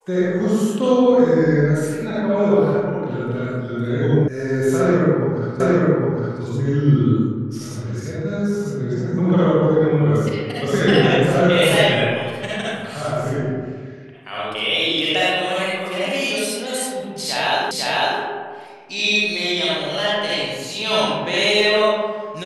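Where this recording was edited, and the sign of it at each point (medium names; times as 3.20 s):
4.28 s: sound stops dead
5.60 s: repeat of the last 0.81 s
17.71 s: repeat of the last 0.5 s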